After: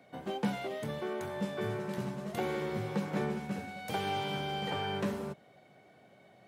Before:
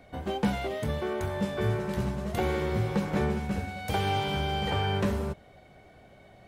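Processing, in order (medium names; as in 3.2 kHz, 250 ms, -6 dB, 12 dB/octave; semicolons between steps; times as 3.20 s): high-pass 130 Hz 24 dB/octave; trim -5 dB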